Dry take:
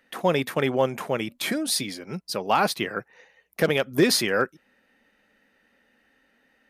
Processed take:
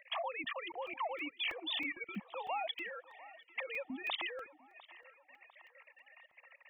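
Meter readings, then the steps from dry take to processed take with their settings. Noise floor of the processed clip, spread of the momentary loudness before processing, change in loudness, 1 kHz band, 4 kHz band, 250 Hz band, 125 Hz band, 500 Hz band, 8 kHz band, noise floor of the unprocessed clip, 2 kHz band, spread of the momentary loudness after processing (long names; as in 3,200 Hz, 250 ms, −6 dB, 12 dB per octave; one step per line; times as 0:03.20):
−70 dBFS, 11 LU, −15.0 dB, −13.0 dB, −11.5 dB, −21.0 dB, −28.5 dB, −20.0 dB, below −40 dB, −67 dBFS, −11.0 dB, 22 LU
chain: three sine waves on the formant tracks
high-pass filter 390 Hz 6 dB per octave
reverb reduction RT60 0.61 s
high-shelf EQ 2,600 Hz +4.5 dB
in parallel at +2 dB: downward compressor 6 to 1, threshold −37 dBFS, peak gain reduction 21.5 dB
on the sum: brickwall limiter −17 dBFS, peak gain reduction 9.5 dB
output level in coarse steps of 21 dB
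phaser with its sweep stopped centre 1,500 Hz, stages 6
on a send: feedback echo with a band-pass in the loop 700 ms, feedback 63%, band-pass 1,100 Hz, level −17 dB
on the sum: regular buffer underruns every 0.32 s, samples 128, zero, from 0:00.87
level +7.5 dB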